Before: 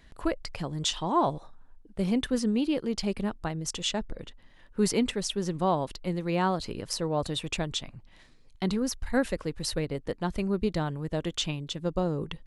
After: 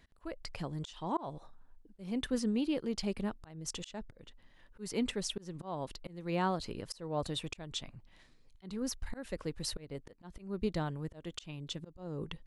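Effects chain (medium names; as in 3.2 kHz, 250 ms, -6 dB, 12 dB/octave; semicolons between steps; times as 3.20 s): slow attack 268 ms; trim -5.5 dB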